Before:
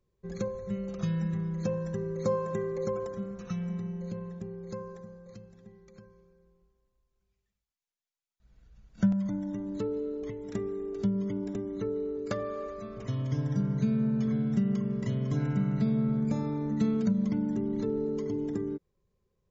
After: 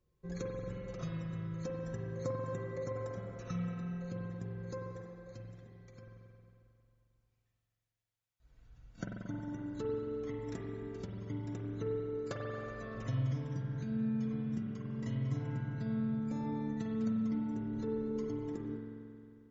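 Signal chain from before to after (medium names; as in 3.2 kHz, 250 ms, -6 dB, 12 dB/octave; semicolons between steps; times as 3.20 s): compression, threshold -33 dBFS, peak gain reduction 13 dB; comb of notches 200 Hz; spring tank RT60 2.5 s, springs 45 ms, chirp 80 ms, DRR -0.5 dB; trim -1 dB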